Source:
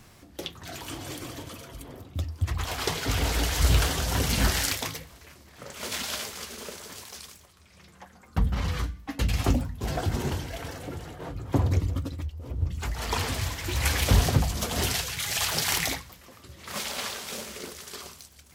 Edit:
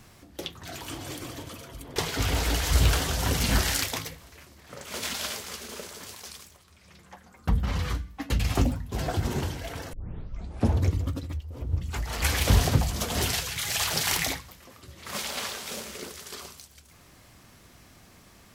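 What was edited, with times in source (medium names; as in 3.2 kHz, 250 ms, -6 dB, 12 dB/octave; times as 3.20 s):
1.96–2.85 s: delete
10.82 s: tape start 0.90 s
13.11–13.83 s: delete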